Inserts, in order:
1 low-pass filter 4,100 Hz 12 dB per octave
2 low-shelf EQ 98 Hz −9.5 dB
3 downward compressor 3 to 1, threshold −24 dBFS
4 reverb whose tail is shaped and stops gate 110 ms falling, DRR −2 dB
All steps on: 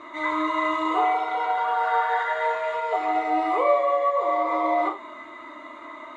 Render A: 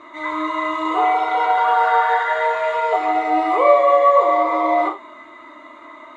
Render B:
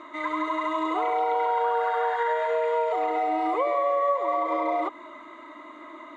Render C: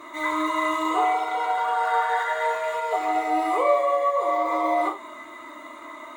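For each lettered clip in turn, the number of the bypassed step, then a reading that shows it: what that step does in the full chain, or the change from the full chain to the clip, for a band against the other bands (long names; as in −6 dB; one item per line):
3, average gain reduction 4.5 dB
4, change in crest factor −3.0 dB
1, 4 kHz band +1.5 dB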